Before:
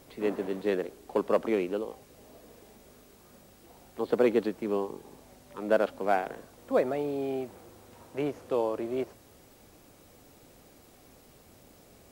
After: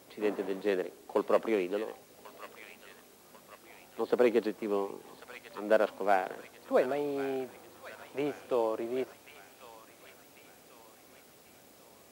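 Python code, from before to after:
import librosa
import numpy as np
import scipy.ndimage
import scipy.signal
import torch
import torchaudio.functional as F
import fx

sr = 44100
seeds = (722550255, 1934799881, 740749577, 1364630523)

y = fx.highpass(x, sr, hz=290.0, slope=6)
y = fx.echo_wet_highpass(y, sr, ms=1093, feedback_pct=49, hz=1500.0, wet_db=-8.0)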